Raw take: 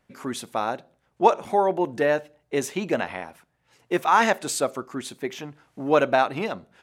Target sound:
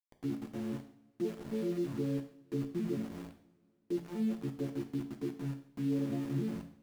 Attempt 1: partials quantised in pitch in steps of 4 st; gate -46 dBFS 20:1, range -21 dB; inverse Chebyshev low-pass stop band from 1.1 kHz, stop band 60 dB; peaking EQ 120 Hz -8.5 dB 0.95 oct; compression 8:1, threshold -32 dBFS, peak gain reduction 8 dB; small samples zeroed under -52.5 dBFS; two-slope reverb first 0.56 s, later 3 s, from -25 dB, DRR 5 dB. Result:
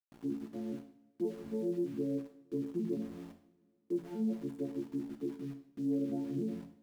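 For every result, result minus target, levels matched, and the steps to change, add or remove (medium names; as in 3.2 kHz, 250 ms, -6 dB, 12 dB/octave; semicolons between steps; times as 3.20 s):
125 Hz band -6.0 dB; small samples zeroed: distortion -8 dB
change: peaking EQ 120 Hz +2.5 dB 0.95 oct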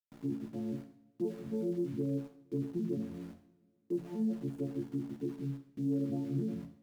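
small samples zeroed: distortion -8 dB
change: small samples zeroed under -45 dBFS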